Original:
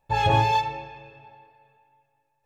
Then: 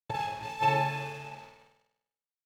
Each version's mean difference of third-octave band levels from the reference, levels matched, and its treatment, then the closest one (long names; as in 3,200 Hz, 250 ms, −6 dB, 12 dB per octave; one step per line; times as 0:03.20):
11.0 dB: high-pass filter 120 Hz 24 dB per octave
compressor whose output falls as the input rises −29 dBFS, ratio −0.5
dead-zone distortion −48 dBFS
on a send: flutter between parallel walls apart 8.5 metres, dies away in 0.79 s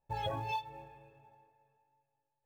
3.0 dB: low-pass filter 1,100 Hz 6 dB per octave
noise reduction from a noise print of the clip's start 18 dB
downward compressor 16 to 1, threshold −40 dBFS, peak gain reduction 12.5 dB
in parallel at −9 dB: floating-point word with a short mantissa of 2 bits
on the sum: level +4.5 dB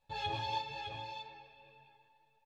7.5 dB: parametric band 3,900 Hz +13 dB 0.92 octaves
downward compressor 1.5 to 1, threshold −50 dBFS, peak gain reduction 12.5 dB
on a send: multi-tap delay 189/608 ms −8/−7.5 dB
on the sum: string-ensemble chorus
level −5 dB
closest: second